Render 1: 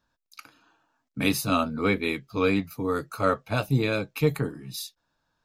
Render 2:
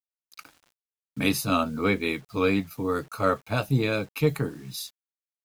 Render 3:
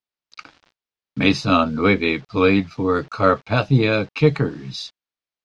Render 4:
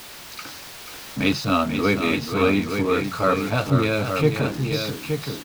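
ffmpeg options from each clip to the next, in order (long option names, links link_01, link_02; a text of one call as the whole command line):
ffmpeg -i in.wav -af "acrusher=bits=8:mix=0:aa=0.000001" out.wav
ffmpeg -i in.wav -af "lowpass=frequency=5200:width=0.5412,lowpass=frequency=5200:width=1.3066,volume=7.5dB" out.wav
ffmpeg -i in.wav -af "aeval=exprs='val(0)+0.5*0.0501*sgn(val(0))':channel_layout=same,aecho=1:1:487|873:0.398|0.473,volume=-5dB" out.wav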